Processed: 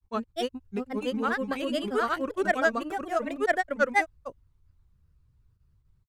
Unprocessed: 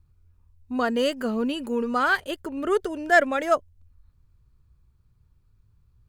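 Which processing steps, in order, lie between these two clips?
granular cloud 100 ms, grains 28 per second, spray 894 ms, pitch spread up and down by 3 semitones
level −1 dB

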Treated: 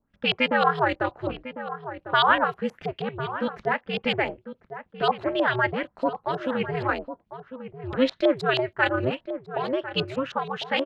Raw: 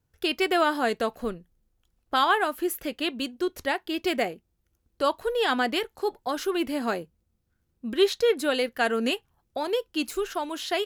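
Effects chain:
ring modulation 130 Hz
auto-filter low-pass saw up 6.3 Hz 690–4,100 Hz
slap from a distant wall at 180 metres, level −11 dB
level +2 dB

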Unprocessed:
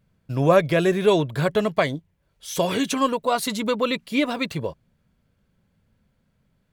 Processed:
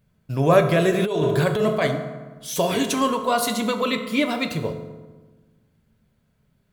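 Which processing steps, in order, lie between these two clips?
high-shelf EQ 9,700 Hz +6 dB
convolution reverb RT60 1.3 s, pre-delay 4 ms, DRR 5.5 dB
0:00.94–0:01.87: compressor whose output falls as the input rises −20 dBFS, ratio −1

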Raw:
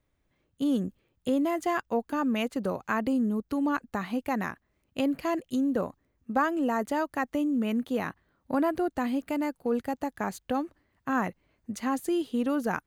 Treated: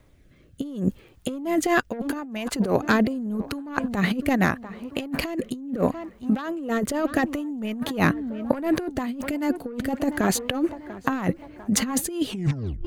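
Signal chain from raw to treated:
turntable brake at the end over 0.60 s
phase shifter 0.26 Hz, delay 4.4 ms, feedback 22%
sine wavefolder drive 5 dB, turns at −13 dBFS
on a send: tape delay 694 ms, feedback 53%, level −21 dB, low-pass 2,500 Hz
on the sum: rotating-speaker cabinet horn 0.75 Hz, later 5.5 Hz, at 0:08.14
compressor whose output falls as the input rises −27 dBFS, ratio −0.5
level +4 dB

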